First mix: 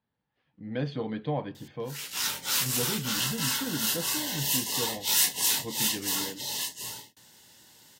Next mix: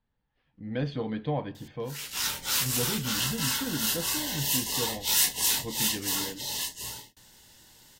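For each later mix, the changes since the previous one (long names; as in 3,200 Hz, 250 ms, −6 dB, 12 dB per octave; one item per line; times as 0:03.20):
speech: send +8.5 dB
master: remove high-pass filter 120 Hz 12 dB per octave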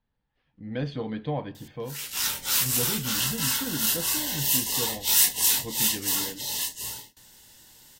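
background: send on
master: add high-shelf EQ 9,400 Hz +6 dB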